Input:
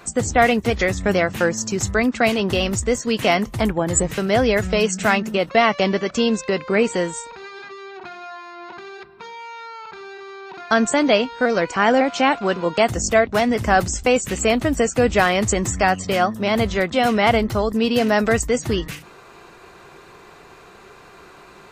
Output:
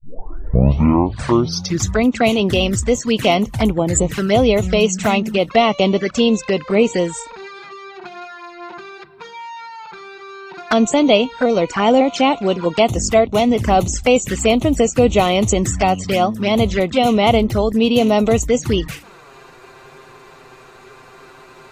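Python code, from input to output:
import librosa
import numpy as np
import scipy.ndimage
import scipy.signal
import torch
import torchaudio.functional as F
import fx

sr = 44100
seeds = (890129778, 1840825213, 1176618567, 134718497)

y = fx.tape_start_head(x, sr, length_s=1.97)
y = fx.env_flanger(y, sr, rest_ms=9.3, full_db=-16.0)
y = F.gain(torch.from_numpy(y), 5.0).numpy()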